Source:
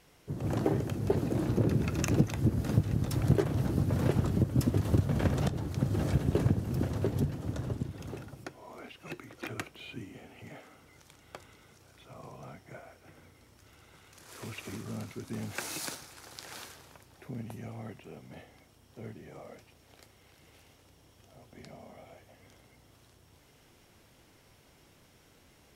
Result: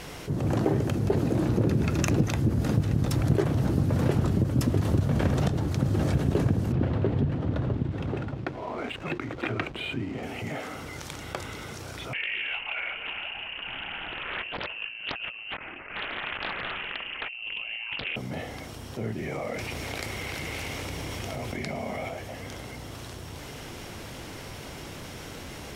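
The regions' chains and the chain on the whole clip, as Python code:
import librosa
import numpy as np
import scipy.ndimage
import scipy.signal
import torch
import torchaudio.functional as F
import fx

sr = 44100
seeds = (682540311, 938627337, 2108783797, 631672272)

y = fx.chain(x, sr, fx.lowpass(hz=3700.0, slope=24),
    fx.backlash(play_db=-54.0), at=(6.72, 10.23))
y = fx.chain(y, sr, fx.over_compress(threshold_db=-47.0, ratio=-0.5),
    fx.freq_invert(carrier_hz=2900),
    fx.doppler_dist(depth_ms=0.82), at=(12.13, 18.16))
y = fx.chain(y, sr, fx.peak_eq(hz=2200.0, db=7.5, octaves=0.3),
    fx.env_flatten(amount_pct=70), at=(19.18, 22.09))
y = fx.high_shelf(y, sr, hz=9900.0, db=-7.0)
y = fx.env_flatten(y, sr, amount_pct=50)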